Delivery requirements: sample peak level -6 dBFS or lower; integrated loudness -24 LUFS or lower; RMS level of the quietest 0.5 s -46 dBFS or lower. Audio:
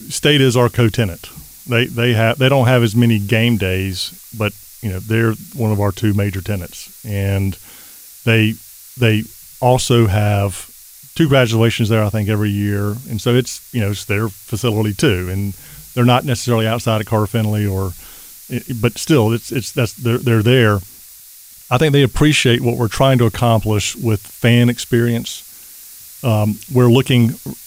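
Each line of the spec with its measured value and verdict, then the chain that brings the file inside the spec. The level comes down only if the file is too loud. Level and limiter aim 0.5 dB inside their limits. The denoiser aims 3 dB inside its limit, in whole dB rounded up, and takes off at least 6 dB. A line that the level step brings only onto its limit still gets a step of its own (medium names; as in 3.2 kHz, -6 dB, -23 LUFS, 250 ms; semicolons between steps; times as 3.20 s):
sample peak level -2.0 dBFS: fail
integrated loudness -16.0 LUFS: fail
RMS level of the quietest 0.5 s -40 dBFS: fail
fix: trim -8.5 dB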